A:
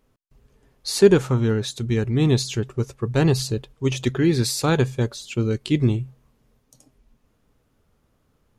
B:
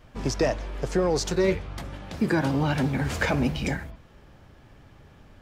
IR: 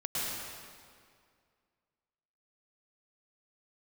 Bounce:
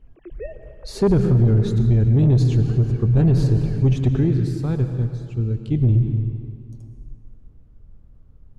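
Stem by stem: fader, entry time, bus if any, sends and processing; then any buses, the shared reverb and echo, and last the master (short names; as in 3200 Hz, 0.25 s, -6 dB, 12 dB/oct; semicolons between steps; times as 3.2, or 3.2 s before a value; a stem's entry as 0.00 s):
4.14 s -5.5 dB -> 4.4 s -15.5 dB -> 5.55 s -15.5 dB -> 6.07 s -5.5 dB, 0.00 s, send -12.5 dB, tilt -3 dB/oct
-8.0 dB, 0.00 s, send -21 dB, sine-wave speech; rotary speaker horn 1 Hz; auto duck -16 dB, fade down 1.15 s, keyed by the first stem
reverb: on, RT60 2.1 s, pre-delay 0.101 s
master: low shelf 150 Hz +11.5 dB; soft clip -6 dBFS, distortion -15 dB; limiter -10.5 dBFS, peak gain reduction 4 dB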